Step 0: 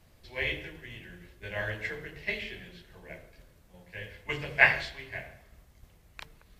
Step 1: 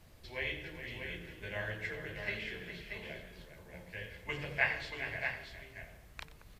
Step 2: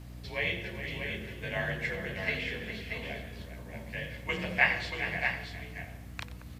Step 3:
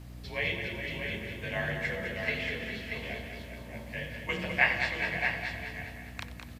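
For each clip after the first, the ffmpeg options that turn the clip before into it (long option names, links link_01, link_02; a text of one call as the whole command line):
ffmpeg -i in.wav -filter_complex "[0:a]acompressor=threshold=-48dB:ratio=1.5,asplit=2[link_01][link_02];[link_02]aecho=0:1:91|411|633:0.158|0.282|0.473[link_03];[link_01][link_03]amix=inputs=2:normalize=0,volume=1dB" out.wav
ffmpeg -i in.wav -af "afreqshift=41,aeval=exprs='val(0)+0.00282*(sin(2*PI*60*n/s)+sin(2*PI*2*60*n/s)/2+sin(2*PI*3*60*n/s)/3+sin(2*PI*4*60*n/s)/4+sin(2*PI*5*60*n/s)/5)':channel_layout=same,volume=6dB" out.wav
ffmpeg -i in.wav -af "aecho=1:1:204|408|612|816|1020|1224:0.398|0.215|0.116|0.0627|0.0339|0.0183" out.wav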